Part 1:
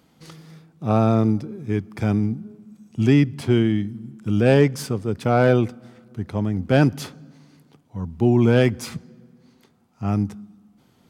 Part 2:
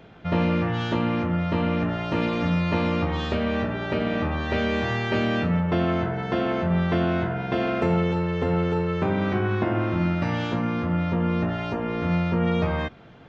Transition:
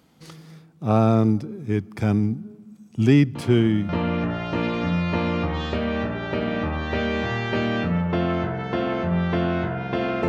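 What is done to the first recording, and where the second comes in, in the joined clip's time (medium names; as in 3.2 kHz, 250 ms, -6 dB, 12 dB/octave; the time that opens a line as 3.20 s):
part 1
3.35 s: add part 2 from 0.94 s 0.54 s -11.5 dB
3.89 s: go over to part 2 from 1.48 s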